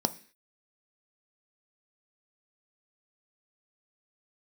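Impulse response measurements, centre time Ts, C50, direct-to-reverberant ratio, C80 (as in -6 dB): 4 ms, 18.5 dB, 10.5 dB, 23.0 dB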